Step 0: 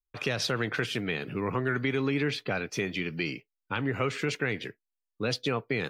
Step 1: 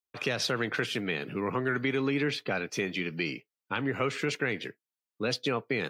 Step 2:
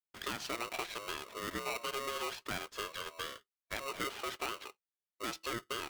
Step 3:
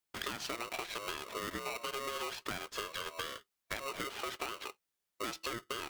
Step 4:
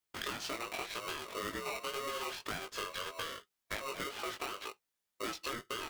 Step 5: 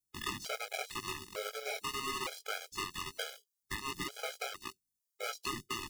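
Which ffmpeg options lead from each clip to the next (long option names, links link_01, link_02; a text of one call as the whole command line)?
ffmpeg -i in.wav -af "highpass=140" out.wav
ffmpeg -i in.wav -af "bass=frequency=250:gain=-12,treble=frequency=4000:gain=-10,aeval=exprs='val(0)*sgn(sin(2*PI*820*n/s))':channel_layout=same,volume=-7dB" out.wav
ffmpeg -i in.wav -af "acompressor=threshold=-45dB:ratio=6,volume=8.5dB" out.wav
ffmpeg -i in.wav -af "flanger=delay=18:depth=3.9:speed=1.9,volume=3dB" out.wav
ffmpeg -i in.wav -filter_complex "[0:a]acrossover=split=270|4600[link_01][link_02][link_03];[link_02]acrusher=bits=5:mix=0:aa=0.5[link_04];[link_01][link_04][link_03]amix=inputs=3:normalize=0,afftfilt=real='re*gt(sin(2*PI*1.1*pts/sr)*(1-2*mod(floor(b*sr/1024/420),2)),0)':imag='im*gt(sin(2*PI*1.1*pts/sr)*(1-2*mod(floor(b*sr/1024/420),2)),0)':win_size=1024:overlap=0.75,volume=4dB" out.wav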